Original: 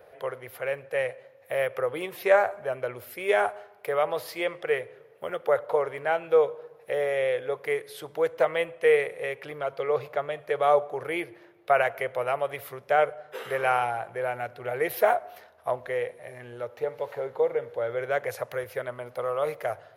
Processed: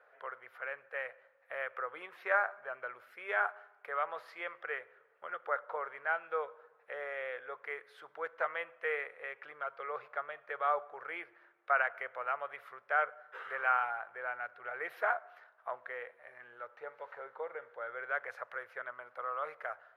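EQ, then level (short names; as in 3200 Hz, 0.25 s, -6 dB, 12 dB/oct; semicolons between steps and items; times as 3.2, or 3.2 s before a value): band-pass 1400 Hz, Q 2.9; 0.0 dB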